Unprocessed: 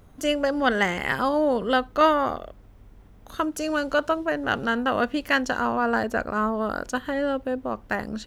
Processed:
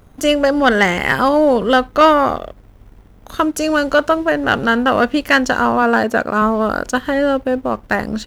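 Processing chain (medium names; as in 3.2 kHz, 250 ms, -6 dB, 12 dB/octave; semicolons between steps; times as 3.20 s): 5.82–6.42 s: high-pass 120 Hz; waveshaping leveller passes 1; trim +6 dB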